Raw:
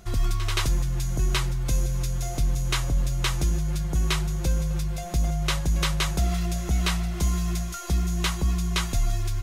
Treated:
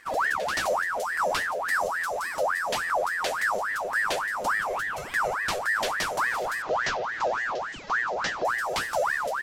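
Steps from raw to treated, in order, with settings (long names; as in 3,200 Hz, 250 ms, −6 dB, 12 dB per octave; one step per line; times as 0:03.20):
0:04.59–0:05.35: parametric band 1,600 Hz +14 dB 0.47 octaves
0:06.62–0:08.45: Butterworth low-pass 5,400 Hz 48 dB per octave
ring modulator whose carrier an LFO sweeps 1,200 Hz, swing 55%, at 3.5 Hz
level −1 dB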